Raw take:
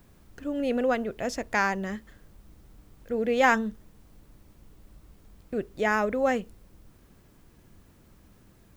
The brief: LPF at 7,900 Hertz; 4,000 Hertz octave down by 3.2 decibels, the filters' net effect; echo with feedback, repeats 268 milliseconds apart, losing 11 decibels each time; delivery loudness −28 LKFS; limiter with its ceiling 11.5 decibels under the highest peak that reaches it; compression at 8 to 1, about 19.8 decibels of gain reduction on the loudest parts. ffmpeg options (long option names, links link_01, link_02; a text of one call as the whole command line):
ffmpeg -i in.wav -af "lowpass=7900,equalizer=frequency=4000:width_type=o:gain=-4.5,acompressor=threshold=-37dB:ratio=8,alimiter=level_in=12.5dB:limit=-24dB:level=0:latency=1,volume=-12.5dB,aecho=1:1:268|536|804:0.282|0.0789|0.0221,volume=20.5dB" out.wav